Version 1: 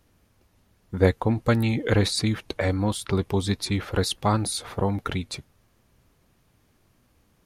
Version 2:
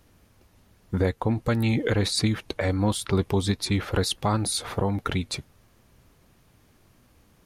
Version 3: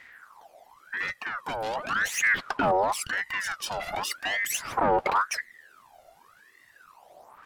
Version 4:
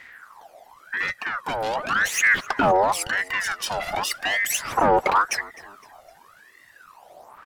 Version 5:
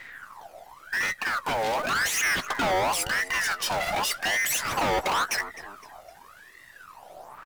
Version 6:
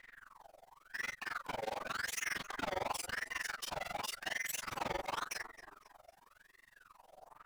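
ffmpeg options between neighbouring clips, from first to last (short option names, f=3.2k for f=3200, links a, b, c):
-af "alimiter=limit=-17.5dB:level=0:latency=1:release=441,volume=4.5dB"
-af "asoftclip=type=tanh:threshold=-27dB,aphaser=in_gain=1:out_gain=1:delay=1.5:decay=0.73:speed=0.4:type=sinusoidal,aeval=exprs='val(0)*sin(2*PI*1300*n/s+1300*0.5/0.91*sin(2*PI*0.91*n/s))':c=same"
-filter_complex "[0:a]asplit=4[a][b][c][d];[b]adelay=256,afreqshift=-50,volume=-22.5dB[e];[c]adelay=512,afreqshift=-100,volume=-28.9dB[f];[d]adelay=768,afreqshift=-150,volume=-35.3dB[g];[a][e][f][g]amix=inputs=4:normalize=0,volume=5dB"
-filter_complex "[0:a]asplit=2[a][b];[b]acrusher=bits=6:dc=4:mix=0:aa=0.000001,volume=-8.5dB[c];[a][c]amix=inputs=2:normalize=0,asoftclip=type=hard:threshold=-23dB,asplit=2[d][e];[e]adelay=16,volume=-13.5dB[f];[d][f]amix=inputs=2:normalize=0"
-af "flanger=delay=22.5:depth=5:speed=0.78,tremolo=f=22:d=1,volume=-7dB"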